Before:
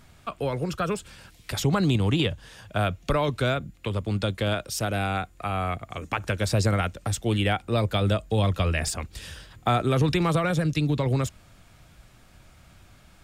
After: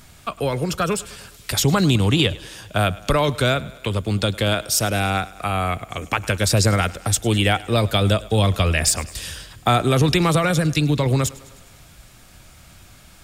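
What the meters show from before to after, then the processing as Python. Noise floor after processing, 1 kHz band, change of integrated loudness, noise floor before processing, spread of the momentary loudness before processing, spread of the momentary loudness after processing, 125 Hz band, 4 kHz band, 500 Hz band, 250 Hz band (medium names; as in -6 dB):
-47 dBFS, +5.5 dB, +6.0 dB, -55 dBFS, 10 LU, 9 LU, +5.0 dB, +9.0 dB, +5.5 dB, +5.0 dB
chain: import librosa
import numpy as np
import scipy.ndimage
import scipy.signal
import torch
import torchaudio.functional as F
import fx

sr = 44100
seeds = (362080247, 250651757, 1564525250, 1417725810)

y = fx.high_shelf(x, sr, hz=4000.0, db=9.0)
y = fx.echo_thinned(y, sr, ms=103, feedback_pct=61, hz=150.0, wet_db=-20.0)
y = y * librosa.db_to_amplitude(5.0)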